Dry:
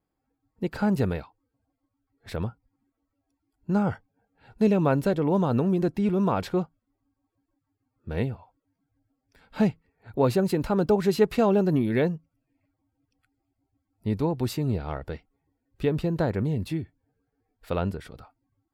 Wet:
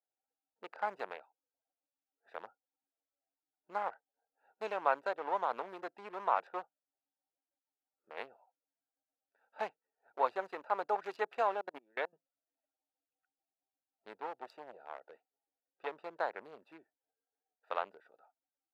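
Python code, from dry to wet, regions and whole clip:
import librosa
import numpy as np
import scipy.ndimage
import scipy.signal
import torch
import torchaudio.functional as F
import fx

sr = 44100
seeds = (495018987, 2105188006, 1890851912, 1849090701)

y = fx.chain(x, sr, fx.highpass(hz=100.0, slope=12),
    fx.high_shelf(hz=9700.0, db=-5.0),
    fx.level_steps(step_db=22), at=(11.42, 12.13))
y = fx.chain(y, sr, fx.highpass(hz=40.0, slope=6),
    fx.transformer_sat(knee_hz=400.0), at=(14.15, 15.87))
y = fx.wiener(y, sr, points=41)
y = scipy.signal.sosfilt(scipy.signal.butter(4, 850.0, 'highpass', fs=sr, output='sos'), y)
y = fx.tilt_eq(y, sr, slope=-4.5)
y = y * 10.0 ** (1.5 / 20.0)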